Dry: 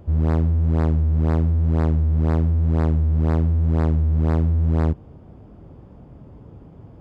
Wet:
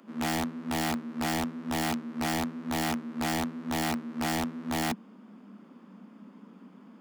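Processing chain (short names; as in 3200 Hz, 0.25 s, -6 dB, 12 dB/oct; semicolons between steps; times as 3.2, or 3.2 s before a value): steep high-pass 190 Hz 96 dB/oct; band shelf 510 Hz -12.5 dB; wrapped overs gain 27.5 dB; gain +2.5 dB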